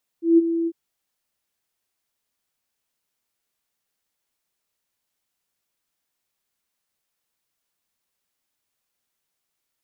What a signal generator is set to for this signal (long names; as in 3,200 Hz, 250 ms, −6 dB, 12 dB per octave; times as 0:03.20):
note with an ADSR envelope sine 333 Hz, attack 160 ms, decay 25 ms, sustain −11 dB, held 0.45 s, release 50 ms −9 dBFS